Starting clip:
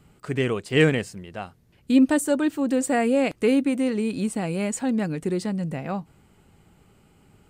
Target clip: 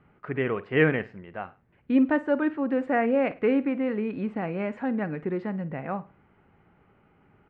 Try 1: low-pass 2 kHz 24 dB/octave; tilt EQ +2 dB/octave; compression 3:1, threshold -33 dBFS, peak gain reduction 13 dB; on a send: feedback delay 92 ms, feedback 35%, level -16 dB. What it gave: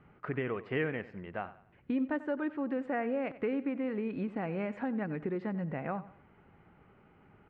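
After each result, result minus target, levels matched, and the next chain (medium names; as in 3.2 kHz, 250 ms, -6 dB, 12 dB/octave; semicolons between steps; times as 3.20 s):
echo 40 ms late; compression: peak gain reduction +13 dB
low-pass 2 kHz 24 dB/octave; tilt EQ +2 dB/octave; compression 3:1, threshold -33 dBFS, peak gain reduction 13 dB; on a send: feedback delay 52 ms, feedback 35%, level -16 dB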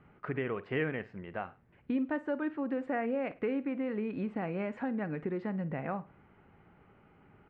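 compression: peak gain reduction +13 dB
low-pass 2 kHz 24 dB/octave; tilt EQ +2 dB/octave; on a send: feedback delay 52 ms, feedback 35%, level -16 dB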